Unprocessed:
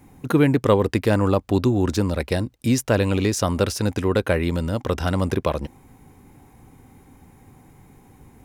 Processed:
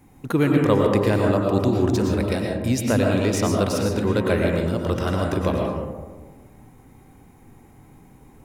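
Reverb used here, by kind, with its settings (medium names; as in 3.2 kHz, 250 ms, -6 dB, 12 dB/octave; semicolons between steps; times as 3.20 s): algorithmic reverb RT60 1.4 s, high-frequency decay 0.3×, pre-delay 75 ms, DRR 0 dB; trim -3 dB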